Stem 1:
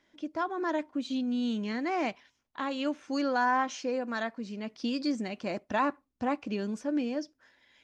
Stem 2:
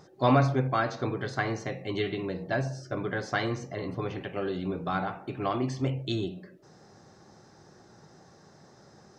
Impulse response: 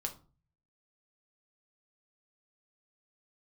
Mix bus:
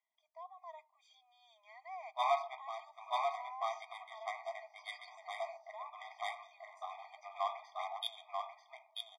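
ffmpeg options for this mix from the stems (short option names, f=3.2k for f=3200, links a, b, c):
-filter_complex "[0:a]highshelf=f=2.5k:g=-8.5,dynaudnorm=f=270:g=5:m=5dB,alimiter=limit=-20dB:level=0:latency=1,volume=-18dB,asplit=3[a][b][c];[b]volume=-15.5dB[d];[1:a]equalizer=f=3.4k:t=o:w=1.4:g=8,aeval=exprs='sgn(val(0))*max(abs(val(0))-0.00335,0)':c=same,adynamicsmooth=sensitivity=1.5:basefreq=1.6k,adelay=1950,volume=-4dB,asplit=2[e][f];[f]volume=-4dB[g];[c]apad=whole_len=490902[h];[e][h]sidechaincompress=threshold=-55dB:ratio=8:attack=16:release=210[i];[2:a]atrim=start_sample=2205[j];[d][j]afir=irnorm=-1:irlink=0[k];[g]aecho=0:1:938:1[l];[a][i][k][l]amix=inputs=4:normalize=0,afftfilt=real='re*eq(mod(floor(b*sr/1024/630),2),1)':imag='im*eq(mod(floor(b*sr/1024/630),2),1)':win_size=1024:overlap=0.75"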